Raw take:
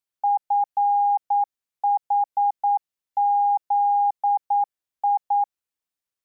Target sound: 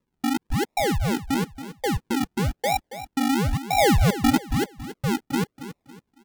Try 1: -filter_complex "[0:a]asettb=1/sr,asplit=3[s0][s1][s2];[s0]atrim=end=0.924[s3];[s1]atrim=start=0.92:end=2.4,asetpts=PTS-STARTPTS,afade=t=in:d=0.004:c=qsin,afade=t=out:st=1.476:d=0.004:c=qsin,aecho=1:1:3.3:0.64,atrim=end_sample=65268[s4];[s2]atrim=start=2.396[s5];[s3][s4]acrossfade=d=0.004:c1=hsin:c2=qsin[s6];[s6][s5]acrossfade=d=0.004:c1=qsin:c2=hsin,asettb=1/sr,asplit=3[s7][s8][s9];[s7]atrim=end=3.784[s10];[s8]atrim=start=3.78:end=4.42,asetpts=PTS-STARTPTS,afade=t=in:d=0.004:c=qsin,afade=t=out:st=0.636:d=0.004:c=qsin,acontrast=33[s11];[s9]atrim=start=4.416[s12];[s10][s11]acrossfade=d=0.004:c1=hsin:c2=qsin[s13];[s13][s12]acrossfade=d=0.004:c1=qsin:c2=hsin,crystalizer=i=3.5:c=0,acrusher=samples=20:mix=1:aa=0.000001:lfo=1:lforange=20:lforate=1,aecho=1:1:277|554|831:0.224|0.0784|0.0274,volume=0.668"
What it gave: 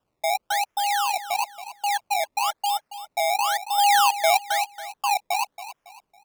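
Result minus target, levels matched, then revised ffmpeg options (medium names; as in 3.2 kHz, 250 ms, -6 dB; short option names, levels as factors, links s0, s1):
decimation with a swept rate: distortion -24 dB
-filter_complex "[0:a]asettb=1/sr,asplit=3[s0][s1][s2];[s0]atrim=end=0.924[s3];[s1]atrim=start=0.92:end=2.4,asetpts=PTS-STARTPTS,afade=t=in:d=0.004:c=qsin,afade=t=out:st=1.476:d=0.004:c=qsin,aecho=1:1:3.3:0.64,atrim=end_sample=65268[s4];[s2]atrim=start=2.396[s5];[s3][s4]acrossfade=d=0.004:c1=hsin:c2=qsin[s6];[s6][s5]acrossfade=d=0.004:c1=qsin:c2=hsin,asettb=1/sr,asplit=3[s7][s8][s9];[s7]atrim=end=3.784[s10];[s8]atrim=start=3.78:end=4.42,asetpts=PTS-STARTPTS,afade=t=in:d=0.004:c=qsin,afade=t=out:st=0.636:d=0.004:c=qsin,acontrast=33[s11];[s9]atrim=start=4.416[s12];[s10][s11]acrossfade=d=0.004:c1=hsin:c2=qsin[s13];[s13][s12]acrossfade=d=0.004:c1=qsin:c2=hsin,crystalizer=i=3.5:c=0,acrusher=samples=56:mix=1:aa=0.000001:lfo=1:lforange=56:lforate=1,aecho=1:1:277|554|831:0.224|0.0784|0.0274,volume=0.668"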